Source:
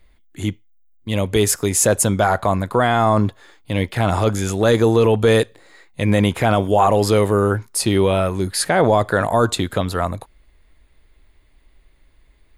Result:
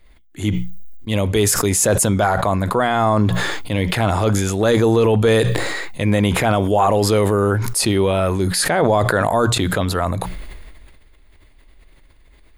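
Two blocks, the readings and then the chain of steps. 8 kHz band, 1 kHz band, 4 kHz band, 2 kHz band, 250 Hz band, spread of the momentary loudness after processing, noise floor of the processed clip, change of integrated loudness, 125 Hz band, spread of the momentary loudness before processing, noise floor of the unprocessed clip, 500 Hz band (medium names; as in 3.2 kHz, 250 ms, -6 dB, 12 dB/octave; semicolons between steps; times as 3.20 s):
+1.0 dB, 0.0 dB, +2.0 dB, +2.0 dB, +1.0 dB, 8 LU, -49 dBFS, +0.5 dB, +1.5 dB, 11 LU, -55 dBFS, 0.0 dB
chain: hum notches 60/120/180 Hz; peak limiter -8.5 dBFS, peak gain reduction 3.5 dB; decay stretcher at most 28 dB/s; trim +1.5 dB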